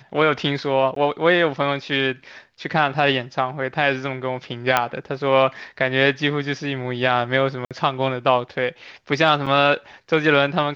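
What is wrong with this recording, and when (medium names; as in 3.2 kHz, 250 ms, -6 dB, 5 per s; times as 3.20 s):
0.95–0.96 s: dropout 13 ms
4.77 s: pop -3 dBFS
7.65–7.71 s: dropout 57 ms
9.46–9.47 s: dropout 6.2 ms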